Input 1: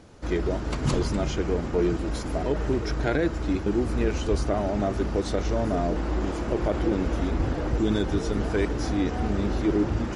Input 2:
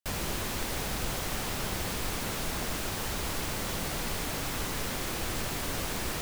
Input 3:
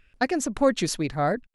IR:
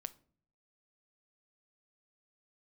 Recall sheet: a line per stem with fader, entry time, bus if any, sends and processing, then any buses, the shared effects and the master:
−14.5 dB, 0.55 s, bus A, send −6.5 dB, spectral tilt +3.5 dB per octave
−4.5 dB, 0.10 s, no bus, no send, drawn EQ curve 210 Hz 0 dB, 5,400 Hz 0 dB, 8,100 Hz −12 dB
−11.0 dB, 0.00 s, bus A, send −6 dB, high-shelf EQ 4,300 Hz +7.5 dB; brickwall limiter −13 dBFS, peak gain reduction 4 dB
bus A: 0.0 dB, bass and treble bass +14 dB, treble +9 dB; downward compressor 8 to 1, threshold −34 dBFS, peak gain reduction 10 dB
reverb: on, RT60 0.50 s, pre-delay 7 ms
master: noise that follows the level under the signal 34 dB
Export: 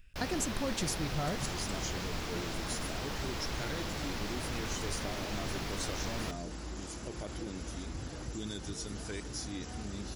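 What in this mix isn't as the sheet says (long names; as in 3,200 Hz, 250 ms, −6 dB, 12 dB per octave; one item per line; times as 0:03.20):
stem 1: send off
master: missing noise that follows the level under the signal 34 dB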